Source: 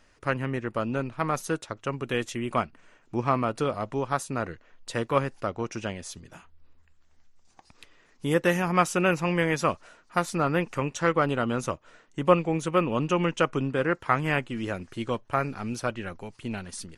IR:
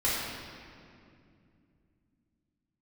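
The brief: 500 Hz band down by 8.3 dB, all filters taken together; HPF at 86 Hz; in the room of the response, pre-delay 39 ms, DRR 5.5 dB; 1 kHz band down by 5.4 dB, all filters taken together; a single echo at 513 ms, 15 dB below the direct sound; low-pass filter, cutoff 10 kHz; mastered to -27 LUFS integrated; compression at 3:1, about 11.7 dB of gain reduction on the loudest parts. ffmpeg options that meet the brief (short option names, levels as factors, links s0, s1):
-filter_complex "[0:a]highpass=86,lowpass=10000,equalizer=f=500:t=o:g=-9,equalizer=f=1000:t=o:g=-5,acompressor=threshold=0.0126:ratio=3,aecho=1:1:513:0.178,asplit=2[s0][s1];[1:a]atrim=start_sample=2205,adelay=39[s2];[s1][s2]afir=irnorm=-1:irlink=0,volume=0.15[s3];[s0][s3]amix=inputs=2:normalize=0,volume=4.22"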